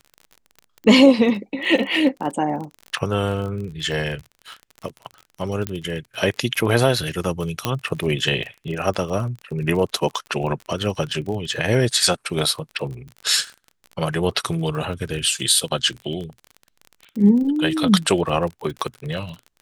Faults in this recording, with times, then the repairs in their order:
surface crackle 34 per second −29 dBFS
0:05.67: click −9 dBFS
0:07.65: click −5 dBFS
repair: click removal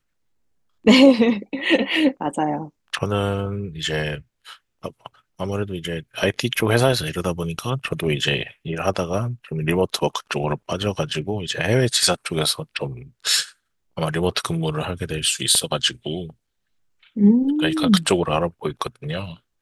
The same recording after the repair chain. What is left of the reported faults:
none of them is left

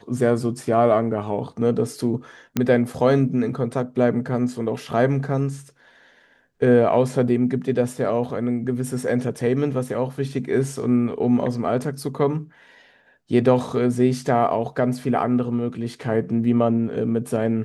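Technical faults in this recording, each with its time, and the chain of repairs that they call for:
0:02.57: click −7 dBFS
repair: click removal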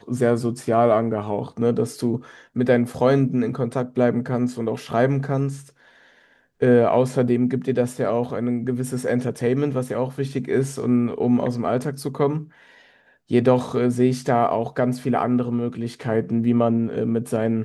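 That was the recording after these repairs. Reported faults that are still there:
none of them is left

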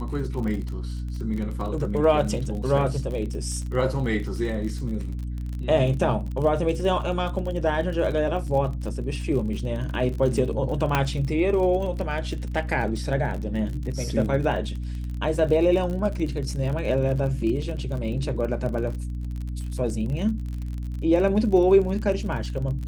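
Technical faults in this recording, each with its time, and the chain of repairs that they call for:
surface crackle 38 per second −31 dBFS
mains hum 60 Hz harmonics 5 −30 dBFS
0:10.95: click −7 dBFS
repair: click removal
hum removal 60 Hz, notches 5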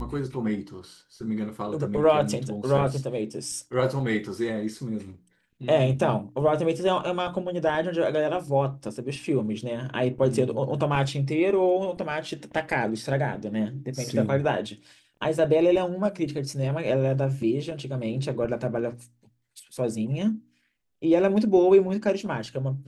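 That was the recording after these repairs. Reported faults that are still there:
0:10.95: click

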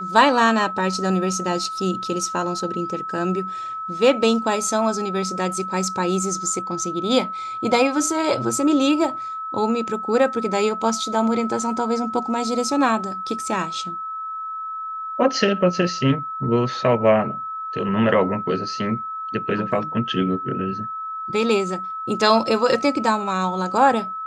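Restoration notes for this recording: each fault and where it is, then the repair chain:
whistle 1,300 Hz −27 dBFS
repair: notch filter 1,300 Hz, Q 30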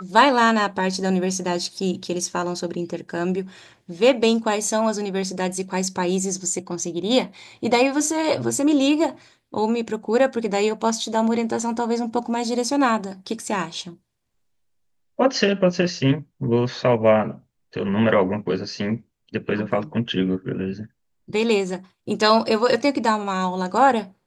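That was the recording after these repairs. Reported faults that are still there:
none of them is left

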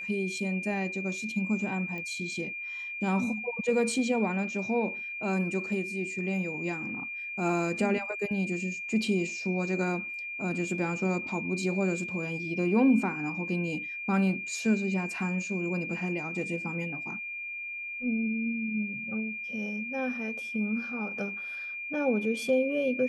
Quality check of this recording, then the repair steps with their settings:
whistle 2,400 Hz −35 dBFS
0:01.98: click −27 dBFS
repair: click removal
notch filter 2,400 Hz, Q 30

